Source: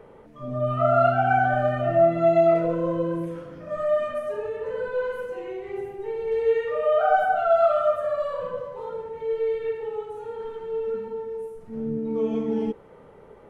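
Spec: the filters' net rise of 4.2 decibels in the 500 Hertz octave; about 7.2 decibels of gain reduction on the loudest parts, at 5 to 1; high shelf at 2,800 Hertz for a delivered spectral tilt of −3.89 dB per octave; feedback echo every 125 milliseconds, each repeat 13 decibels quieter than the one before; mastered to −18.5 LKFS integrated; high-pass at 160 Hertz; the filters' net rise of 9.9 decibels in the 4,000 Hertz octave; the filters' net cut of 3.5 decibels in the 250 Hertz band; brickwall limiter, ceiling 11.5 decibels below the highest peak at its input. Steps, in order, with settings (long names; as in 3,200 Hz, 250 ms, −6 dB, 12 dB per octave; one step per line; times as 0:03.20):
high-pass filter 160 Hz
parametric band 250 Hz −7 dB
parametric band 500 Hz +6.5 dB
high-shelf EQ 2,800 Hz +9 dB
parametric band 4,000 Hz +7 dB
downward compressor 5 to 1, threshold −19 dBFS
brickwall limiter −22.5 dBFS
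repeating echo 125 ms, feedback 22%, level −13 dB
level +10.5 dB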